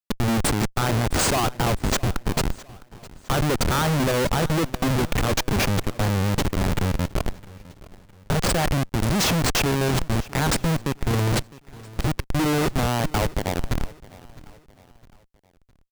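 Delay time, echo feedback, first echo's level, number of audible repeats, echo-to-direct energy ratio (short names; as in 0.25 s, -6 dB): 0.659 s, 42%, -20.5 dB, 2, -19.5 dB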